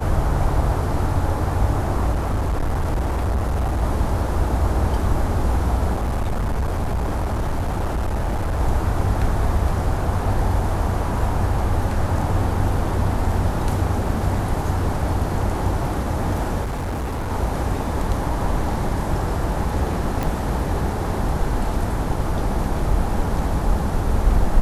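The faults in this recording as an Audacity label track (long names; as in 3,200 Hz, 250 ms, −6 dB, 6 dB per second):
2.120000	3.830000	clipping −17.5 dBFS
5.930000	8.610000	clipping −18.5 dBFS
16.630000	17.320000	clipping −22 dBFS
20.230000	20.230000	click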